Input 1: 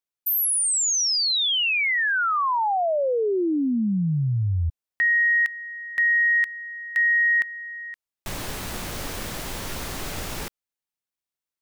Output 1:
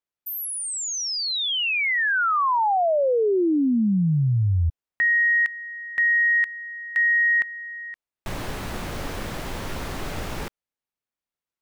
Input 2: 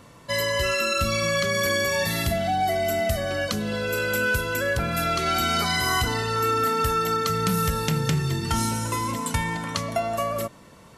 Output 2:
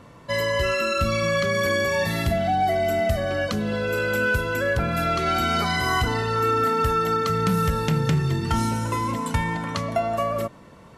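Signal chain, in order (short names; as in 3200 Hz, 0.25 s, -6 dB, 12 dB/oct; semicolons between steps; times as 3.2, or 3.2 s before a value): high shelf 3700 Hz -11 dB; gain +2.5 dB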